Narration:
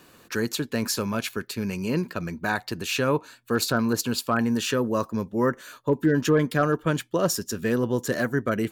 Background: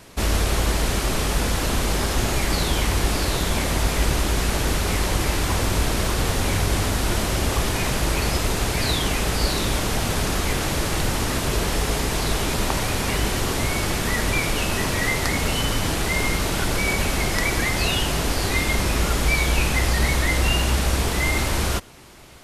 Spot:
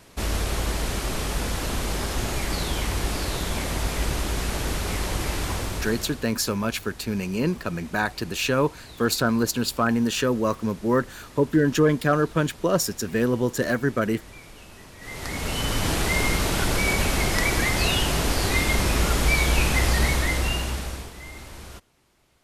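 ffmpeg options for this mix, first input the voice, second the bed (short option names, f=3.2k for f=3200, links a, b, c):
-filter_complex "[0:a]adelay=5500,volume=1.5dB[a];[1:a]volume=17dB,afade=t=out:st=5.45:d=0.82:silence=0.133352,afade=t=in:st=14.99:d=0.93:silence=0.0794328,afade=t=out:st=19.96:d=1.16:silence=0.125893[b];[a][b]amix=inputs=2:normalize=0"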